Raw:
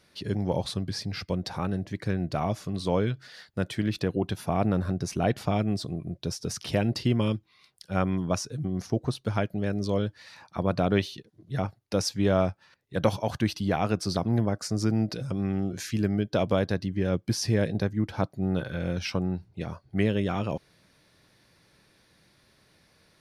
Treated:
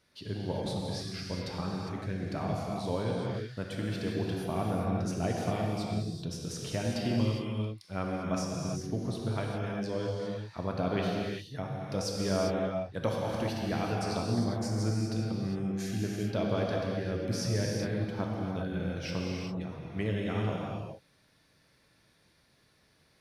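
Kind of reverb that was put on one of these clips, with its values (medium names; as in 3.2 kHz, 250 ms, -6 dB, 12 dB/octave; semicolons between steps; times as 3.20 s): gated-style reverb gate 430 ms flat, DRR -2.5 dB; trim -8.5 dB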